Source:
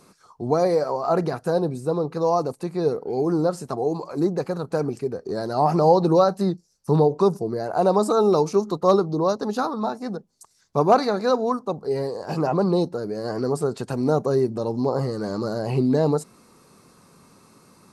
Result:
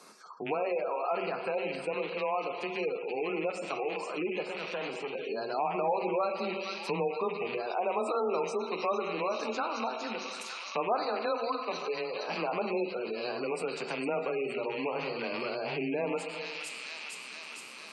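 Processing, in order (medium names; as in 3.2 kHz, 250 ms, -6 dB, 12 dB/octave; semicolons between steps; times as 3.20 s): rattle on loud lows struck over -30 dBFS, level -24 dBFS; de-hum 180.6 Hz, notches 3; on a send at -5 dB: reverberation RT60 1.2 s, pre-delay 5 ms; 4.48–5.15 s: on the sum: valve stage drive 24 dB, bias 0.65; frequency weighting A; feedback echo behind a high-pass 458 ms, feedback 67%, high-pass 2.5 kHz, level -3.5 dB; in parallel at -12 dB: hard clipper -19 dBFS, distortion -11 dB; on the sum: frequency shift +17 Hz; spectral gate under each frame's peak -25 dB strong; compression 2:1, threshold -37 dBFS, peak gain reduction 14 dB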